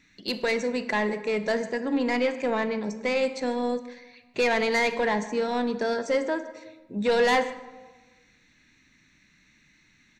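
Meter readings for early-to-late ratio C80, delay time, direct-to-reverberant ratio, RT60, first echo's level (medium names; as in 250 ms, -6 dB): 13.5 dB, 151 ms, 10.0 dB, 1.3 s, -20.5 dB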